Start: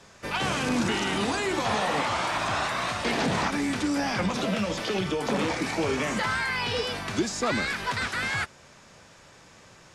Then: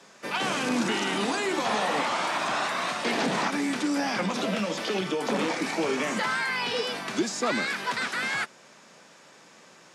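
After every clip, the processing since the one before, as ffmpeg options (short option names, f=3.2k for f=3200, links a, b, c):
-af "highpass=f=180:w=0.5412,highpass=f=180:w=1.3066"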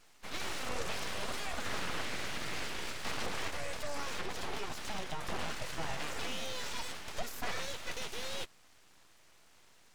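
-af "aeval=exprs='abs(val(0))':c=same,volume=-8dB"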